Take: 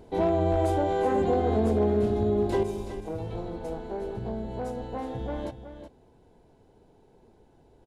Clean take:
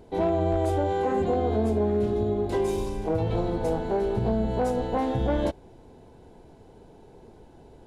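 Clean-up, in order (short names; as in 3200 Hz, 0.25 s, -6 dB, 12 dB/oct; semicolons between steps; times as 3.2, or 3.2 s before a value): clip repair -16 dBFS; inverse comb 0.371 s -10.5 dB; gain correction +8.5 dB, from 2.63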